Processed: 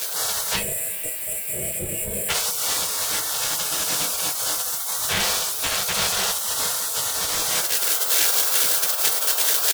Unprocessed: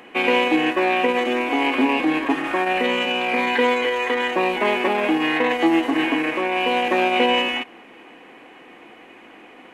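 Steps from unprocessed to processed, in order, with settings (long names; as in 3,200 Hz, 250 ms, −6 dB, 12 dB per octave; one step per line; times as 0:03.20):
high-shelf EQ 3,700 Hz +10 dB
background noise pink −41 dBFS
Chebyshev band-stop filter 300–1,800 Hz, order 3
bass and treble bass +7 dB, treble +4 dB
in parallel at −5 dB: fuzz pedal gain 43 dB, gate −47 dBFS
on the sum: speech leveller 0.5 s
gain on a spectral selection 0:00.56–0:02.29, 680–7,200 Hz −26 dB
ambience of single reflections 35 ms −8 dB, 67 ms −15.5 dB
gate on every frequency bin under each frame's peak −25 dB weak
convolution reverb, pre-delay 3 ms, DRR 7 dB
boost into a limiter +8 dB
level −6 dB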